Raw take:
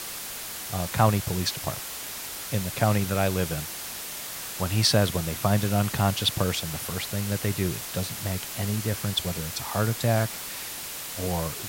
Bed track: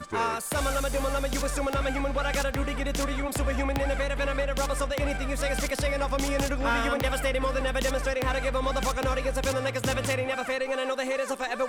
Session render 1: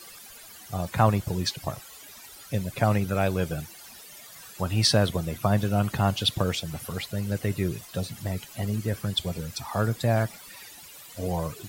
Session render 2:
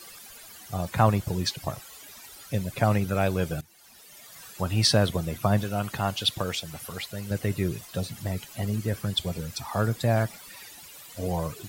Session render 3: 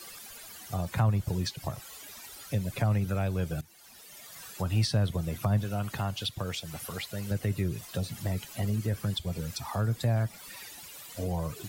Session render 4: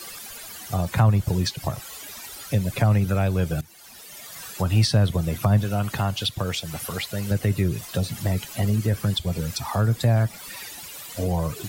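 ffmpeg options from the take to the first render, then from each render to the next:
ffmpeg -i in.wav -af "afftdn=noise_reduction=15:noise_floor=-36" out.wav
ffmpeg -i in.wav -filter_complex "[0:a]asettb=1/sr,asplit=3[link_01][link_02][link_03];[link_01]atrim=end=5.634[link_04];[link_02]atrim=start=5.63:end=7.31,asetpts=PTS-STARTPTS,afade=type=in:duration=0.004:curve=qsin,afade=type=out:start_time=1.676:duration=0.004:curve=qsin,lowshelf=frequency=440:gain=-7[link_05];[link_03]atrim=start=7.306[link_06];[link_04][link_05]acrossfade=duration=0.004:curve1=hsin:curve2=qsin[link_07];[link_07][link_06]acrossfade=duration=0.004:curve1=qsin:curve2=hsin,asplit=2[link_08][link_09];[link_08]atrim=end=3.61,asetpts=PTS-STARTPTS,afade=type=out:start_time=3.606:duration=0.004:curve=hsin:silence=0.141254[link_10];[link_09]atrim=start=3.61,asetpts=PTS-STARTPTS,afade=type=in:duration=0.82:silence=0.141254[link_11];[link_10][link_11]concat=n=2:v=0:a=1" out.wav
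ffmpeg -i in.wav -filter_complex "[0:a]acrossover=split=160[link_01][link_02];[link_02]acompressor=threshold=-34dB:ratio=3[link_03];[link_01][link_03]amix=inputs=2:normalize=0" out.wav
ffmpeg -i in.wav -af "volume=7.5dB" out.wav

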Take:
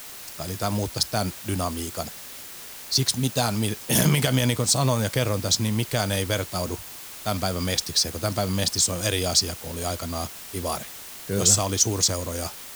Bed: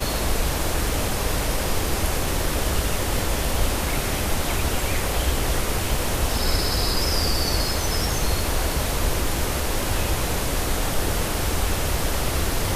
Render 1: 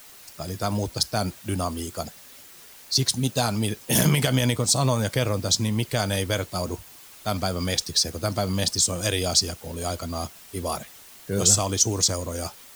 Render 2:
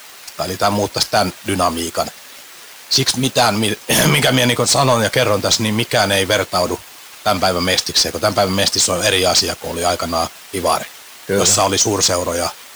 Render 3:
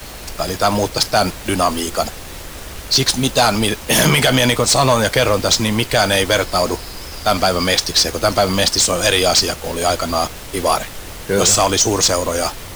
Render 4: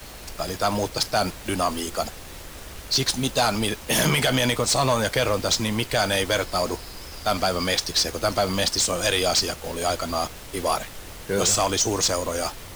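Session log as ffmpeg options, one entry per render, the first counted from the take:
ffmpeg -i in.wav -af "afftdn=noise_reduction=8:noise_floor=-40" out.wav
ffmpeg -i in.wav -filter_complex "[0:a]asplit=2[link_01][link_02];[link_02]highpass=frequency=720:poles=1,volume=20dB,asoftclip=type=tanh:threshold=-4.5dB[link_03];[link_01][link_03]amix=inputs=2:normalize=0,lowpass=frequency=3800:poles=1,volume=-6dB,asplit=2[link_04][link_05];[link_05]acrusher=bits=4:mix=0:aa=0.000001,volume=-6dB[link_06];[link_04][link_06]amix=inputs=2:normalize=0" out.wav
ffmpeg -i in.wav -i bed.wav -filter_complex "[1:a]volume=-10dB[link_01];[0:a][link_01]amix=inputs=2:normalize=0" out.wav
ffmpeg -i in.wav -af "volume=-7.5dB" out.wav

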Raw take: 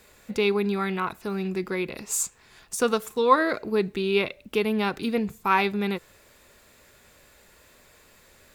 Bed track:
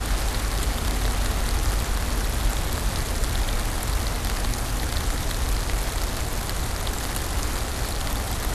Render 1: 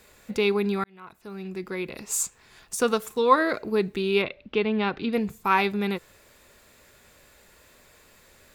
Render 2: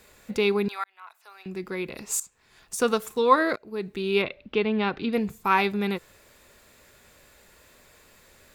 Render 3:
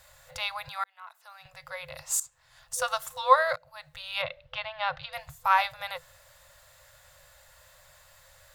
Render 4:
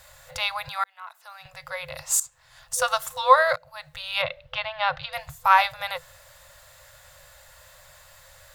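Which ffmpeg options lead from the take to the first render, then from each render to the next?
ffmpeg -i in.wav -filter_complex "[0:a]asettb=1/sr,asplit=3[link_01][link_02][link_03];[link_01]atrim=end=4.224[link_04];[link_02]atrim=start=4.22:end=5.13,asetpts=PTS-STARTPTS,afade=type=in:duration=0.004:curve=qsin,afade=type=out:start_time=0.906:duration=0.004:curve=qsin,lowpass=frequency=4100:width=0.5412,lowpass=frequency=4100:width=1.3066[link_05];[link_03]atrim=start=5.126[link_06];[link_04][link_05]acrossfade=duration=0.004:curve1=hsin:curve2=qsin[link_07];[link_07][link_06]acrossfade=duration=0.004:curve1=qsin:curve2=hsin,asplit=2[link_08][link_09];[link_08]atrim=end=0.84,asetpts=PTS-STARTPTS,afade=type=out:start_time=0.836:duration=0.004:curve=hsin[link_10];[link_09]atrim=start=0.84,asetpts=PTS-STARTPTS,afade=type=in:duration=1.34[link_11];[link_10][link_11]concat=n=2:v=0:a=1" out.wav
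ffmpeg -i in.wav -filter_complex "[0:a]asettb=1/sr,asplit=3[link_01][link_02][link_03];[link_01]atrim=end=0.684[link_04];[link_02]atrim=start=0.68:end=1.46,asetpts=PTS-STARTPTS,afade=type=in:duration=0.004:curve=qsin,afade=type=out:start_time=0.776:duration=0.004:curve=qsin,highpass=frequency=730:width=0.5412,highpass=frequency=730:width=1.3066[link_05];[link_03]atrim=start=1.456[link_06];[link_04][link_05]acrossfade=duration=0.004:curve1=hsin:curve2=qsin[link_07];[link_07][link_06]acrossfade=duration=0.004:curve1=qsin:curve2=hsin,asplit=3[link_08][link_09][link_10];[link_08]atrim=end=2.2,asetpts=PTS-STARTPTS,afade=type=out:start_time=2.196:duration=0.004:curve=hsin:silence=0.133352[link_11];[link_09]atrim=start=2.2:end=3.56,asetpts=PTS-STARTPTS,afade=type=in:duration=0.65:silence=0.133352,afade=type=out:start_time=1.356:duration=0.004:curve=hsin:silence=0.0841395[link_12];[link_10]atrim=start=3.56,asetpts=PTS-STARTPTS,afade=type=in:duration=0.64:silence=0.0841395[link_13];[link_11][link_12][link_13]concat=n=3:v=0:a=1" out.wav
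ffmpeg -i in.wav -af "afftfilt=real='re*(1-between(b*sr/4096,160,500))':imag='im*(1-between(b*sr/4096,160,500))':win_size=4096:overlap=0.75,equalizer=frequency=2400:width_type=o:width=0.21:gain=-8.5" out.wav
ffmpeg -i in.wav -af "volume=5.5dB,alimiter=limit=-3dB:level=0:latency=1" out.wav

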